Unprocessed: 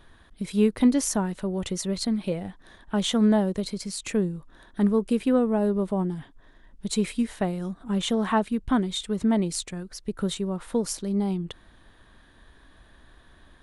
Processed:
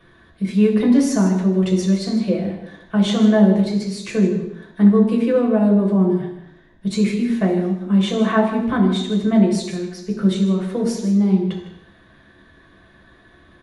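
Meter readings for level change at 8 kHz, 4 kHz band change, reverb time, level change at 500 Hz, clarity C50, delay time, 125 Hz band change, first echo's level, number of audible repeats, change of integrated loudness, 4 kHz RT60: can't be measured, +2.5 dB, 0.85 s, +7.0 dB, 5.5 dB, 156 ms, +10.5 dB, −12.0 dB, 1, +8.0 dB, 0.85 s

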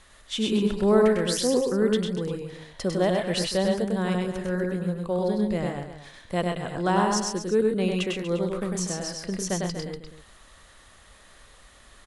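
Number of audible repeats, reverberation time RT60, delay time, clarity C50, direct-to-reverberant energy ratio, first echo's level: 3, no reverb audible, 100 ms, no reverb audible, no reverb audible, −3.0 dB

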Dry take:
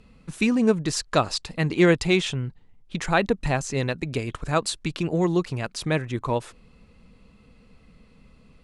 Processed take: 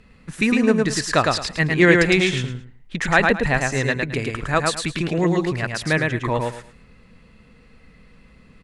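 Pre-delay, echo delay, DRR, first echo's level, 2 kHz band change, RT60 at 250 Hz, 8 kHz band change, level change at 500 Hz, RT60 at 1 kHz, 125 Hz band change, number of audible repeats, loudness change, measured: no reverb audible, 108 ms, no reverb audible, −3.0 dB, +9.5 dB, no reverb audible, +3.5 dB, +3.5 dB, no reverb audible, +3.0 dB, 3, +4.5 dB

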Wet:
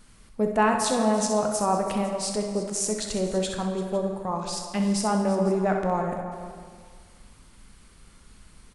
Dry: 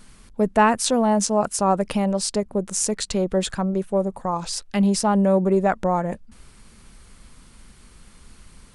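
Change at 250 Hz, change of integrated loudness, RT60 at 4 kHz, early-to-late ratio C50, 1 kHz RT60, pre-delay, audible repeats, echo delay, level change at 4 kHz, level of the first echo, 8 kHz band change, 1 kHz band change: −4.5 dB, −4.0 dB, 1.4 s, 3.5 dB, 1.9 s, 11 ms, 3, 64 ms, −3.5 dB, −8.5 dB, −4.0 dB, −3.5 dB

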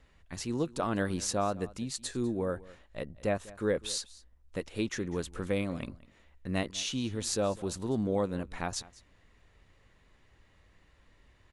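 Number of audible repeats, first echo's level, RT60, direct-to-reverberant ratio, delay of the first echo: 1, −20.5 dB, no reverb audible, no reverb audible, 199 ms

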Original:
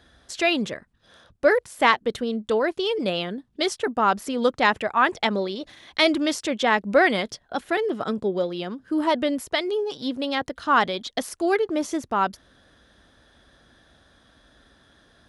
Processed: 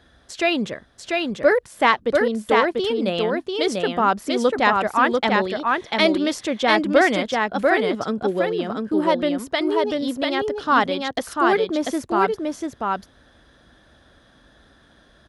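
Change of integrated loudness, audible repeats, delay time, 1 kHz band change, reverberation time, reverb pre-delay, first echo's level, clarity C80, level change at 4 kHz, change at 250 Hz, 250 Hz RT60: +3.0 dB, 1, 692 ms, +3.5 dB, no reverb audible, no reverb audible, −3.0 dB, no reverb audible, +1.5 dB, +3.5 dB, no reverb audible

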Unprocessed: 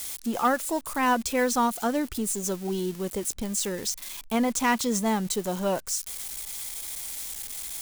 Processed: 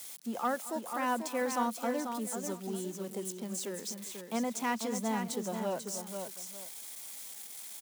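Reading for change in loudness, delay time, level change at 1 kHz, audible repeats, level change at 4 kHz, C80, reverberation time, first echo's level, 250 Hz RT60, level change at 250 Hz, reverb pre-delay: −8.0 dB, 225 ms, −7.5 dB, 3, −9.5 dB, no reverb audible, no reverb audible, −17.5 dB, no reverb audible, −8.0 dB, no reverb audible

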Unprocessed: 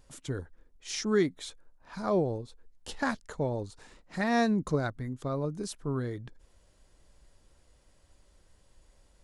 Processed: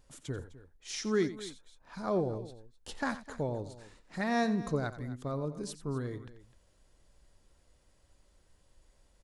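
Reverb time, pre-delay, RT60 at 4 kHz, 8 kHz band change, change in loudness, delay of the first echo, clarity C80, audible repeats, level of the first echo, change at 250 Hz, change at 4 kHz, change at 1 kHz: no reverb audible, no reverb audible, no reverb audible, −3.0 dB, −3.5 dB, 88 ms, no reverb audible, 2, −14.0 dB, −3.5 dB, −3.5 dB, −3.0 dB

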